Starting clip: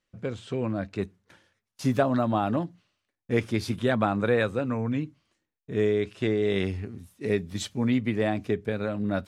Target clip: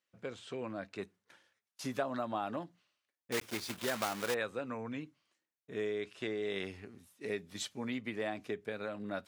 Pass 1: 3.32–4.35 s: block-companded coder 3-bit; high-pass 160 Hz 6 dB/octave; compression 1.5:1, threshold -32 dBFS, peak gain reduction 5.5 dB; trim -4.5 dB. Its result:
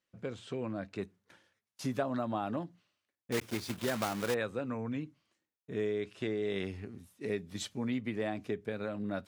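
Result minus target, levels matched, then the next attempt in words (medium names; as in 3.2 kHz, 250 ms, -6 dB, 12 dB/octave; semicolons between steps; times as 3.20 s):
125 Hz band +5.5 dB
3.32–4.35 s: block-companded coder 3-bit; high-pass 580 Hz 6 dB/octave; compression 1.5:1, threshold -32 dBFS, peak gain reduction 4.5 dB; trim -4.5 dB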